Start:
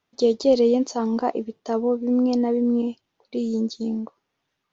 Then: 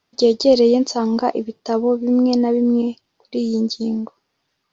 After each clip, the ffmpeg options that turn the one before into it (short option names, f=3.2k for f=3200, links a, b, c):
-af "equalizer=f=4.8k:w=4.1:g=9,volume=4.5dB"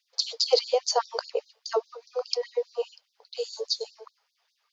-af "afftfilt=real='re*gte(b*sr/1024,390*pow(3700/390,0.5+0.5*sin(2*PI*4.9*pts/sr)))':imag='im*gte(b*sr/1024,390*pow(3700/390,0.5+0.5*sin(2*PI*4.9*pts/sr)))':win_size=1024:overlap=0.75"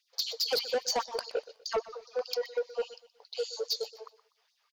-af "asoftclip=type=tanh:threshold=-24dB,aecho=1:1:123|246|369:0.126|0.0415|0.0137"